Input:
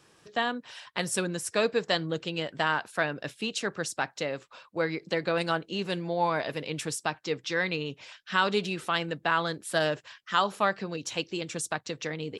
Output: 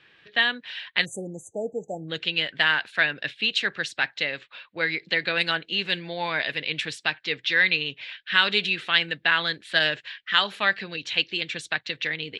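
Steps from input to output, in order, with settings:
low-pass that shuts in the quiet parts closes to 3,000 Hz, open at −23 dBFS
flat-topped bell 2,600 Hz +15 dB
time-frequency box erased 0:01.05–0:02.08, 880–6,000 Hz
level −3.5 dB

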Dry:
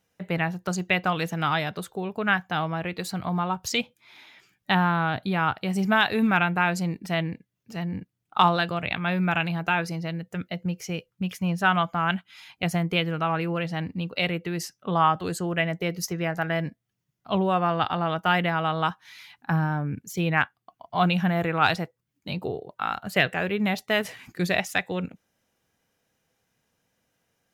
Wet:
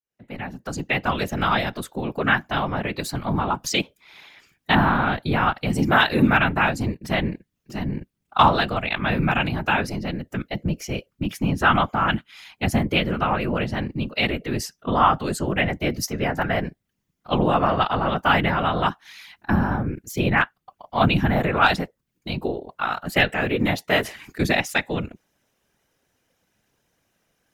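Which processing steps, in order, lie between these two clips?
fade in at the beginning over 1.32 s
0:06.49–0:07.02: transient designer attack 0 dB, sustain −7 dB
random phases in short frames
level +3.5 dB

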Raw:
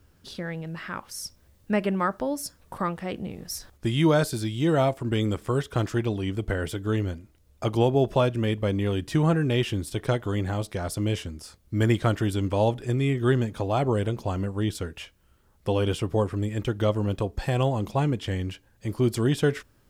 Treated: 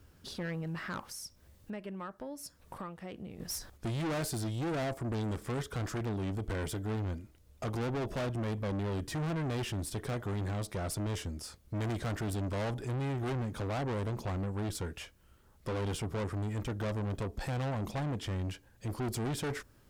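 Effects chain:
0:01.11–0:03.40: downward compressor 3 to 1, threshold −43 dBFS, peak gain reduction 18 dB
dynamic equaliser 2,900 Hz, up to −6 dB, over −49 dBFS, Q 1.4
tube saturation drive 32 dB, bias 0.2

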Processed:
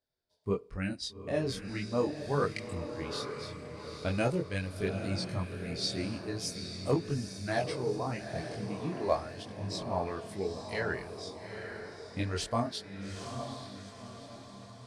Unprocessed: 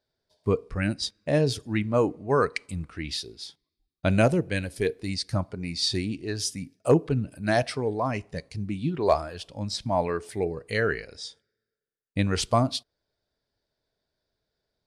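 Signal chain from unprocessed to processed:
feedback delay with all-pass diffusion 844 ms, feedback 50%, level −7.5 dB
multi-voice chorus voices 2, 0.41 Hz, delay 23 ms, depth 2.6 ms
level −5 dB

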